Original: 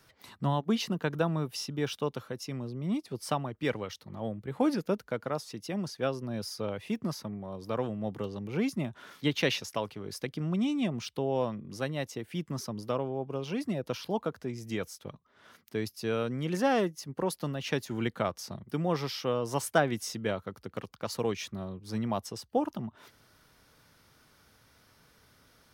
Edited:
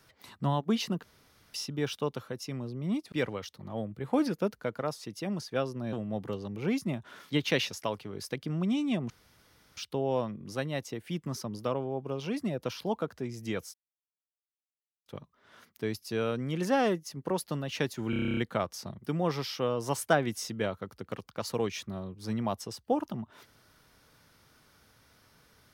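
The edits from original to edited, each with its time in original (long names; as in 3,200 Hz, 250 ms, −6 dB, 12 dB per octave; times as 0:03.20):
0:01.03–0:01.54: fill with room tone
0:03.12–0:03.59: remove
0:06.40–0:07.84: remove
0:11.01: splice in room tone 0.67 s
0:14.98: splice in silence 1.32 s
0:18.02: stutter 0.03 s, 10 plays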